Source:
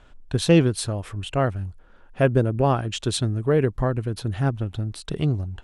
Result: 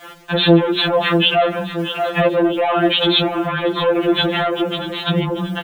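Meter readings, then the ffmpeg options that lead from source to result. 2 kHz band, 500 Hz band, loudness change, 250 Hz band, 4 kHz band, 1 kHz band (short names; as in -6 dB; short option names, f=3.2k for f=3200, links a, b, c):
+12.5 dB, +7.0 dB, +6.5 dB, +7.0 dB, +15.5 dB, +10.0 dB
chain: -af "agate=range=-33dB:threshold=-47dB:ratio=3:detection=peak,aresample=16000,asoftclip=type=tanh:threshold=-22dB,aresample=44100,aresample=8000,aresample=44100,acrusher=bits=11:mix=0:aa=0.000001,acompressor=threshold=-30dB:ratio=6,highpass=220,bandreject=f=60:t=h:w=6,bandreject=f=120:t=h:w=6,bandreject=f=180:t=h:w=6,bandreject=f=240:t=h:w=6,bandreject=f=300:t=h:w=6,bandreject=f=360:t=h:w=6,bandreject=f=420:t=h:w=6,bandreject=f=480:t=h:w=6,bandreject=f=540:t=h:w=6,aecho=1:1:634|1268|1902|2536:0.178|0.0854|0.041|0.0197,alimiter=level_in=31.5dB:limit=-1dB:release=50:level=0:latency=1,afftfilt=real='re*2.83*eq(mod(b,8),0)':imag='im*2.83*eq(mod(b,8),0)':win_size=2048:overlap=0.75,volume=-2dB"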